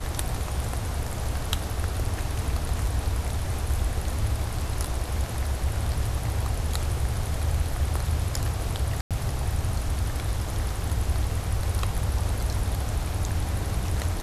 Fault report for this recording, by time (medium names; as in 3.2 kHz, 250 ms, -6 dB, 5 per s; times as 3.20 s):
9.01–9.11 s: dropout 97 ms